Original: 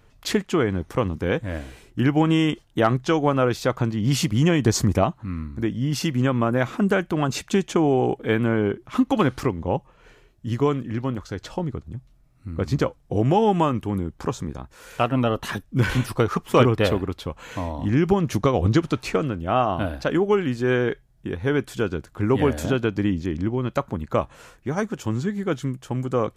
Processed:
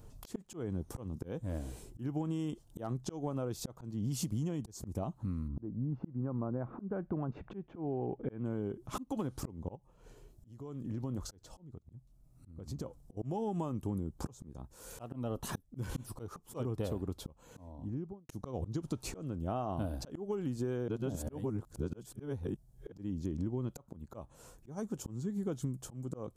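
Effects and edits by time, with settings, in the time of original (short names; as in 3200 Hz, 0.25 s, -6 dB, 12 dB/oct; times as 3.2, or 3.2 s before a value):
5.47–8.44 LPF 1200 Hz -> 2600 Hz 24 dB/oct
9.75–11.79 compressor 5:1, threshold -33 dBFS
12.51–13.17 compressor 12:1, threshold -30 dBFS
17.14–18.29 studio fade out
20.88–22.92 reverse
whole clip: EQ curve 180 Hz 0 dB, 910 Hz -5 dB, 2000 Hz -17 dB, 8200 Hz +2 dB; auto swell 0.779 s; compressor 16:1, threshold -35 dBFS; gain +3 dB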